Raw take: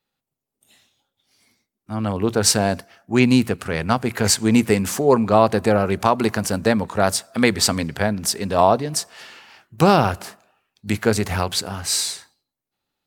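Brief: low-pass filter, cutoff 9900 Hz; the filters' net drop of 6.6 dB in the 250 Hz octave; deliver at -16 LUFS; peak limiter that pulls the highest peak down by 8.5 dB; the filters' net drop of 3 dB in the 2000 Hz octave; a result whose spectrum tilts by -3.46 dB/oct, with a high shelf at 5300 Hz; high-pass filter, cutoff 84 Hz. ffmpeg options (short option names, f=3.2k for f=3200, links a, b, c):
-af "highpass=84,lowpass=9.9k,equalizer=f=250:t=o:g=-8,equalizer=f=2k:t=o:g=-4.5,highshelf=f=5.3k:g=4.5,volume=7.5dB,alimiter=limit=-1.5dB:level=0:latency=1"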